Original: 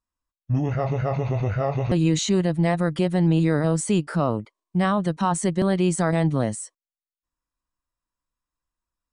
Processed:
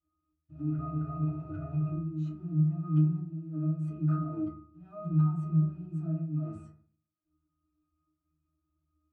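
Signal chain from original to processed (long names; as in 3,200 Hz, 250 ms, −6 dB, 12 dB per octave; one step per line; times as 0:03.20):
dynamic equaliser 160 Hz, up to +5 dB, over −34 dBFS, Q 3.1
compressor whose output falls as the input rises −28 dBFS, ratio −0.5
transient designer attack −10 dB, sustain +3 dB
soft clipping −28 dBFS, distortion −10 dB
hollow resonant body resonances 280/1,200 Hz, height 7 dB, ringing for 30 ms
floating-point word with a short mantissa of 2 bits
resonances in every octave D#, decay 0.42 s
feedback delay network reverb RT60 0.49 s, low-frequency decay 1.3×, high-frequency decay 0.35×, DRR −6.5 dB
level +3 dB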